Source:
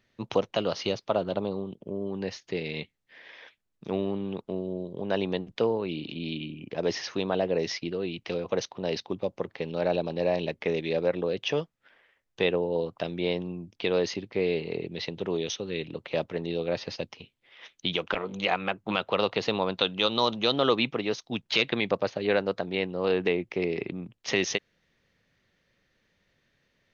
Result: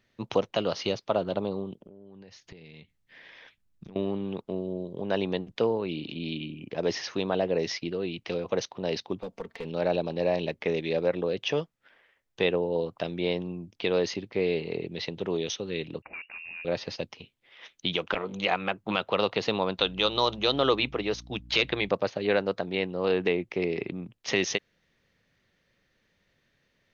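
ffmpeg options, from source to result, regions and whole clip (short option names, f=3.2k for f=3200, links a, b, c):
-filter_complex "[0:a]asettb=1/sr,asplit=3[a][b][c];[a]atrim=end=1.794[d];[b]atrim=start=1.79:end=3.96,asetpts=PTS-STARTPTS,afade=t=in:d=0.004:c=qsin,afade=t=out:st=2.166:d=0.004:c=qsin,acompressor=threshold=-45dB:ratio=12:attack=3.2:release=140:knee=1:detection=peak,asubboost=boost=5.5:cutoff=230[e];[c]atrim=start=3.956[f];[d][e]acrossfade=d=0.004:c1=hsin:c2=qsin[g];[g][f]acrossfade=d=0.004:c1=qsin:c2=hsin,asettb=1/sr,asplit=3[h][i][j];[h]atrim=end=9.224[k];[i]atrim=start=9.22:end=9.65,asetpts=PTS-STARTPTS,afade=t=in:d=0.004:c=qsin,afade=t=out:st=0.426:d=0.004:c=qsin,aecho=1:1:4.4:0.7,atrim=end_sample=18963,acompressor=threshold=-35dB:ratio=2:attack=3.2:release=140:knee=1:detection=peak,aeval=exprs='clip(val(0),-1,0.0251)':c=same[l];[j]atrim=start=9.646[m];[k][l]acrossfade=d=0.004:c1=hsin:c2=qsin[n];[n][m]acrossfade=d=0.004:c1=qsin:c2=hsin,asettb=1/sr,asplit=3[o][p][q];[o]atrim=end=16.024[r];[p]atrim=start=16.02:end=16.65,asetpts=PTS-STARTPTS,afade=t=in:d=0.004:c=qsin,afade=t=out:st=0.626:d=0.004:c=qsin,asoftclip=type=hard:threshold=-27dB,acompressor=threshold=-42dB:ratio=2.5:attack=3.2:release=140:knee=1:detection=peak,lowpass=f=2.5k:t=q:w=0.5098,lowpass=f=2.5k:t=q:w=0.6013,lowpass=f=2.5k:t=q:w=0.9,lowpass=f=2.5k:t=q:w=2.563,afreqshift=-2900[s];[q]atrim=start=16.646[t];[r][s]acrossfade=d=0.004:c1=hsin:c2=qsin[u];[u][t]acrossfade=d=0.004:c1=qsin:c2=hsin,asettb=1/sr,asplit=3[v][w][x];[v]atrim=end=19.794[y];[w]atrim=start=19.79:end=21.89,asetpts=PTS-STARTPTS,afade=t=in:d=0.004:c=qsin,afade=t=out:st=2.096:d=0.004:c=qsin,bandreject=f=230:w=6,aeval=exprs='val(0)+0.00447*(sin(2*PI*60*n/s)+sin(2*PI*2*60*n/s)/2+sin(2*PI*3*60*n/s)/3+sin(2*PI*4*60*n/s)/4+sin(2*PI*5*60*n/s)/5)':c=same[z];[x]atrim=start=21.886[aa];[y][z]acrossfade=d=0.004:c1=hsin:c2=qsin[ab];[ab][aa]acrossfade=d=0.004:c1=qsin:c2=hsin"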